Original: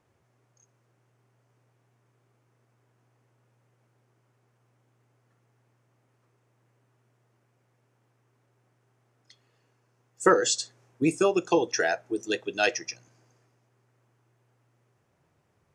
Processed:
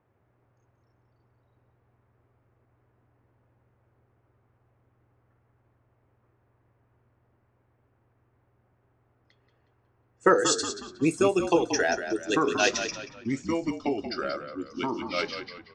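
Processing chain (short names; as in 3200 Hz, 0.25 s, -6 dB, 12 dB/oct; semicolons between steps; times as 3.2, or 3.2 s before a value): echoes that change speed 0.157 s, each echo -3 st, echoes 3, each echo -6 dB; frequency-shifting echo 0.182 s, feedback 41%, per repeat -43 Hz, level -9 dB; low-pass opened by the level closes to 1900 Hz, open at -22.5 dBFS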